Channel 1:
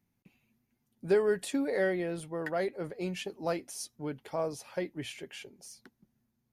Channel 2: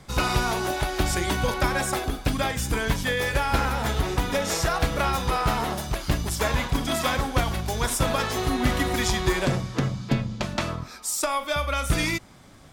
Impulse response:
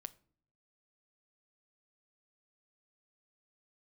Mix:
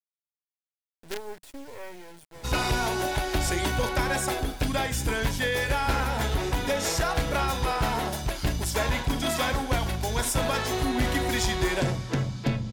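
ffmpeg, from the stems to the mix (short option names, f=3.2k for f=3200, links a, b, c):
-filter_complex "[0:a]acrusher=bits=4:dc=4:mix=0:aa=0.000001,volume=-7dB[a];[1:a]adelay=2350,volume=0dB[b];[a][b]amix=inputs=2:normalize=0,equalizer=f=190:w=5.9:g=-5,bandreject=f=1.2k:w=7.6,asoftclip=type=tanh:threshold=-17dB"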